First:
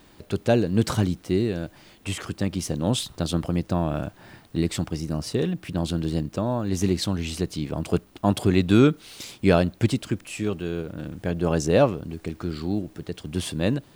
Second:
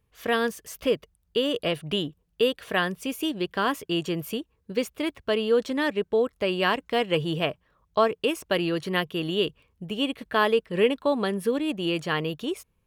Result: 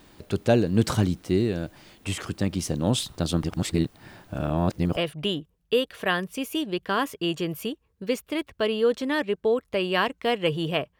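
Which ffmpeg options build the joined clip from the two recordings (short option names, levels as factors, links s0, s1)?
-filter_complex "[0:a]apad=whole_dur=10.99,atrim=end=10.99,asplit=2[s0][s1];[s0]atrim=end=3.442[s2];[s1]atrim=start=3.438:end=4.972,asetpts=PTS-STARTPTS,areverse[s3];[1:a]atrim=start=1.648:end=7.67[s4];[s2][s3]acrossfade=d=0.004:c1=hsin:c2=hsin[s5];[s5][s4]acrossfade=d=0.004:c1=hsin:c2=hsin"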